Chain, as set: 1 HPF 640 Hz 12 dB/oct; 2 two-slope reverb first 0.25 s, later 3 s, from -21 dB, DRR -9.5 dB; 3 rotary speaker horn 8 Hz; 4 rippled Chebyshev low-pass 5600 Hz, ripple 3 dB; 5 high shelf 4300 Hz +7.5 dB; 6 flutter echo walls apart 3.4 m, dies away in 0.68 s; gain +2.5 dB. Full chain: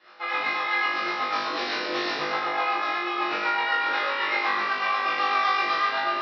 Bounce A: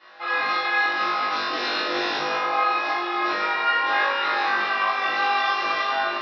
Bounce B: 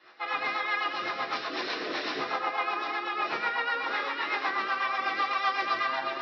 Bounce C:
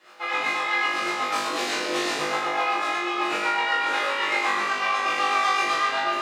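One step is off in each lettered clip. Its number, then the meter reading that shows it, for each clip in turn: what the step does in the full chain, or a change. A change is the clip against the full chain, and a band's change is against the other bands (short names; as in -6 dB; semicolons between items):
3, momentary loudness spread change -1 LU; 6, loudness change -4.5 LU; 4, loudness change +1.0 LU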